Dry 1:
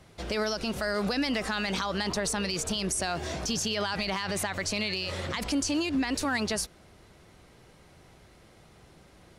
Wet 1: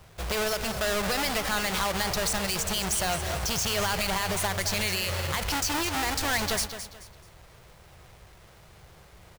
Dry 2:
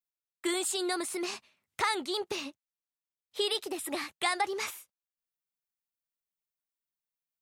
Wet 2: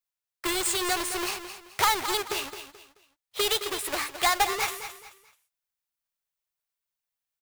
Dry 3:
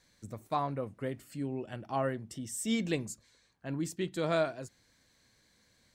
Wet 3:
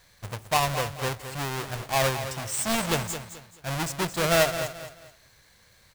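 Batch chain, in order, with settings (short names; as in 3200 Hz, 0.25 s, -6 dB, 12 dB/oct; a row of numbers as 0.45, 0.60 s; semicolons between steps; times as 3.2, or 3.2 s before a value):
half-waves squared off; bell 260 Hz -14 dB 1.1 oct; on a send: feedback echo 0.216 s, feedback 31%, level -10.5 dB; on the sum: match loudness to -27 LUFS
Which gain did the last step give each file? +0.5, +3.0, +6.5 dB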